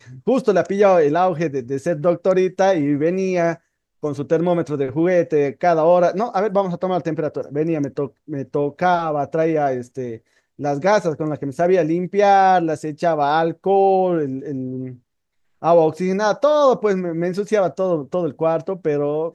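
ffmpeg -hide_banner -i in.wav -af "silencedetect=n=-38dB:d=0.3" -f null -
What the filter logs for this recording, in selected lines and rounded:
silence_start: 3.56
silence_end: 4.03 | silence_duration: 0.47
silence_start: 10.18
silence_end: 10.59 | silence_duration: 0.41
silence_start: 14.96
silence_end: 15.62 | silence_duration: 0.67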